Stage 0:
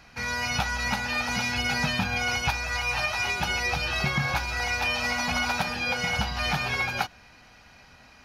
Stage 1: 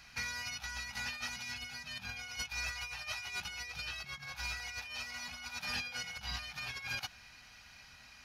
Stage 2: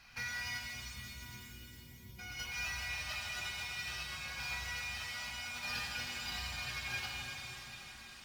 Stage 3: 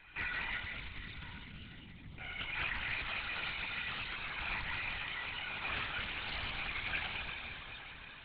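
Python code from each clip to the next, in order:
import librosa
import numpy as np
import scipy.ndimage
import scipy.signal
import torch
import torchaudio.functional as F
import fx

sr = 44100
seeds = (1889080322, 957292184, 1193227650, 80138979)

y1 = fx.over_compress(x, sr, threshold_db=-32.0, ratio=-0.5)
y1 = fx.tone_stack(y1, sr, knobs='5-5-5')
y1 = F.gain(torch.from_numpy(y1), 1.5).numpy()
y2 = scipy.ndimage.median_filter(y1, 5, mode='constant')
y2 = fx.spec_erase(y2, sr, start_s=0.61, length_s=1.58, low_hz=460.0, high_hz=11000.0)
y2 = fx.rev_shimmer(y2, sr, seeds[0], rt60_s=3.9, semitones=7, shimmer_db=-8, drr_db=-3.0)
y2 = F.gain(torch.from_numpy(y2), -3.5).numpy()
y3 = fx.lpc_vocoder(y2, sr, seeds[1], excitation='whisper', order=16)
y3 = fx.doppler_dist(y3, sr, depth_ms=0.4)
y3 = F.gain(torch.from_numpy(y3), 2.5).numpy()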